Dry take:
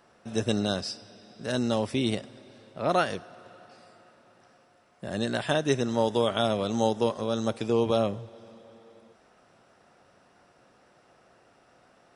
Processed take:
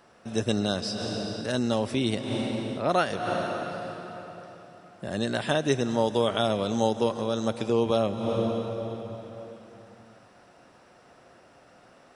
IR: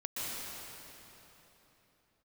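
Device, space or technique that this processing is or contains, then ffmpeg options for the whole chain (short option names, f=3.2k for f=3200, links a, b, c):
ducked reverb: -filter_complex "[0:a]asplit=3[a][b][c];[1:a]atrim=start_sample=2205[d];[b][d]afir=irnorm=-1:irlink=0[e];[c]apad=whole_len=535944[f];[e][f]sidechaincompress=threshold=-39dB:ratio=8:attack=11:release=170,volume=-3.5dB[g];[a][g]amix=inputs=2:normalize=0"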